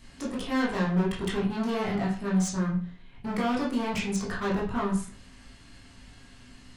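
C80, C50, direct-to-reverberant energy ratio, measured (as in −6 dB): 11.5 dB, 6.5 dB, −6.0 dB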